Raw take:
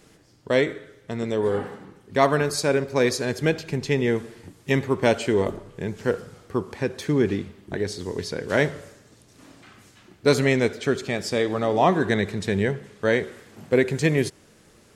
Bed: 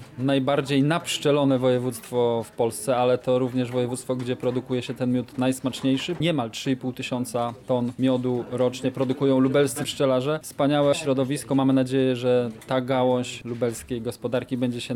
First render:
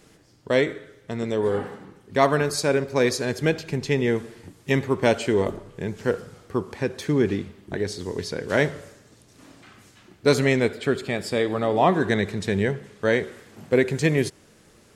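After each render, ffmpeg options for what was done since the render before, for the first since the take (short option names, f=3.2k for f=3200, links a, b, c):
-filter_complex "[0:a]asettb=1/sr,asplit=3[a][b][c];[a]atrim=end=10.594[d];[b]atrim=start=10.59:end=11.94,asetpts=PTS-STARTPTS,afade=t=in:d=0.004:c=qsin,afade=t=out:st=1.346:d=0.004:c=qsin,equalizer=f=6k:w=4.8:g=-12.5[e];[c]atrim=start=11.936[f];[d][e]acrossfade=d=0.004:c1=hsin:c2=qsin[g];[g][f]acrossfade=d=0.004:c1=qsin:c2=hsin"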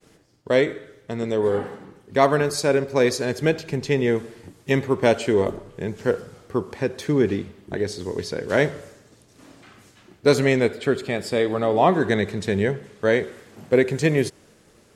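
-af "agate=range=-33dB:threshold=-52dB:ratio=3:detection=peak,equalizer=f=500:t=o:w=1.5:g=2.5"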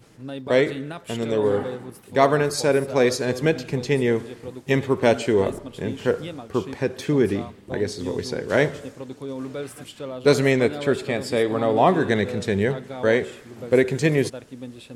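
-filter_complex "[1:a]volume=-12dB[a];[0:a][a]amix=inputs=2:normalize=0"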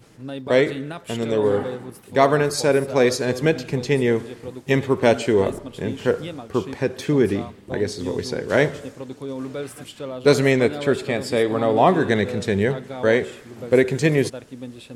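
-af "volume=1.5dB,alimiter=limit=-2dB:level=0:latency=1"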